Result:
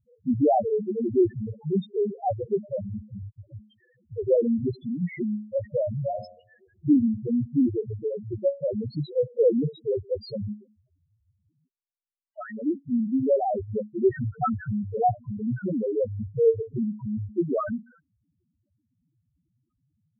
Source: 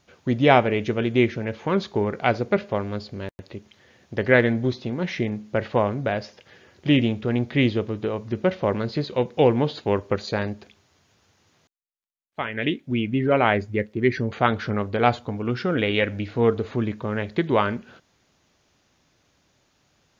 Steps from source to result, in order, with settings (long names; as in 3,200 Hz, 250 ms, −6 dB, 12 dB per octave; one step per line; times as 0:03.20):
spectral peaks only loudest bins 1
0:06.04–0:06.97: hum removal 89.52 Hz, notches 15
level +6 dB